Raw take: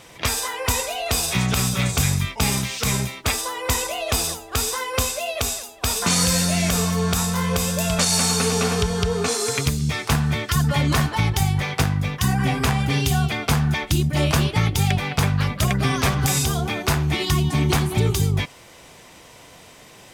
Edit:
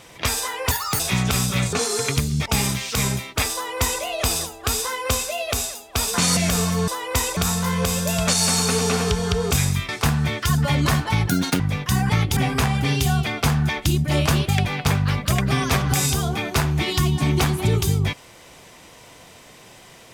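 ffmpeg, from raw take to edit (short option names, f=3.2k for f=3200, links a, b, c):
-filter_complex "[0:a]asplit=15[a][b][c][d][e][f][g][h][i][j][k][l][m][n][o];[a]atrim=end=0.714[p];[b]atrim=start=0.71:end=1.23,asetpts=PTS-STARTPTS,asetrate=79821,aresample=44100[q];[c]atrim=start=1.226:end=1.962[r];[d]atrim=start=9.218:end=9.952[s];[e]atrim=start=2.338:end=6.252[t];[f]atrim=start=6.568:end=7.082[u];[g]atrim=start=3.418:end=3.912[v];[h]atrim=start=7.078:end=9.222[w];[i]atrim=start=1.958:end=2.342[x];[j]atrim=start=9.948:end=11.354[y];[k]atrim=start=11.35:end=11.92,asetpts=PTS-STARTPTS,asetrate=81144,aresample=44100,atrim=end_sample=13661,asetpts=PTS-STARTPTS[z];[l]atrim=start=11.916:end=12.422[aa];[m]atrim=start=14.538:end=14.812[ab];[n]atrim=start=12.418:end=14.542[ac];[o]atrim=start=14.808[ad];[p][q]acrossfade=d=0.004:c1=hsin:c2=hsin[ae];[ae][r]acrossfade=d=0.004:c1=hsin:c2=hsin[af];[af][s]acrossfade=d=0.004:c1=hsin:c2=hsin[ag];[ag][t]acrossfade=d=0.004:c1=hsin:c2=hsin[ah];[ah][u]acrossfade=d=0.004:c1=hsin:c2=hsin[ai];[ai][v]acrossfade=d=0.004:c1=hsin:c2=hsin[aj];[aj][w]acrossfade=d=0.004:c1=hsin:c2=hsin[ak];[ak][x]acrossfade=d=0.004:c1=hsin:c2=hsin[al];[al][y]acrossfade=d=0.004:c1=hsin:c2=hsin[am];[am][z]acrossfade=d=0.004:c1=hsin:c2=hsin[an];[an][aa]acrossfade=d=0.004:c1=hsin:c2=hsin[ao];[ao][ab]acrossfade=d=0.004:c1=hsin:c2=hsin[ap];[ap][ac]acrossfade=d=0.004:c1=hsin:c2=hsin[aq];[aq][ad]acrossfade=d=0.004:c1=hsin:c2=hsin"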